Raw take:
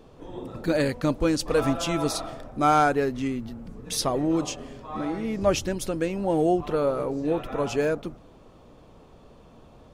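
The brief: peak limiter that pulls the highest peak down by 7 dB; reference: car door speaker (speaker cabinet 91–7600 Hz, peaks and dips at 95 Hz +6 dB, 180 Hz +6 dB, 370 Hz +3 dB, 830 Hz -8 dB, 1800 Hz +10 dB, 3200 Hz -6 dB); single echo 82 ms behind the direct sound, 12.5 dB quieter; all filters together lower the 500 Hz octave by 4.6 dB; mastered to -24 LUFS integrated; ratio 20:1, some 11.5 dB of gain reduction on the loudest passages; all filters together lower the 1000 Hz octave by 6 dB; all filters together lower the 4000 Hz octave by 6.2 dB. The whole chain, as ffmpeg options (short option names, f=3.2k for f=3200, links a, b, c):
-af "equalizer=f=500:t=o:g=-5.5,equalizer=f=1k:t=o:g=-4,equalizer=f=4k:t=o:g=-6,acompressor=threshold=-31dB:ratio=20,alimiter=level_in=5dB:limit=-24dB:level=0:latency=1,volume=-5dB,highpass=91,equalizer=f=95:t=q:w=4:g=6,equalizer=f=180:t=q:w=4:g=6,equalizer=f=370:t=q:w=4:g=3,equalizer=f=830:t=q:w=4:g=-8,equalizer=f=1.8k:t=q:w=4:g=10,equalizer=f=3.2k:t=q:w=4:g=-6,lowpass=f=7.6k:w=0.5412,lowpass=f=7.6k:w=1.3066,aecho=1:1:82:0.237,volume=13dB"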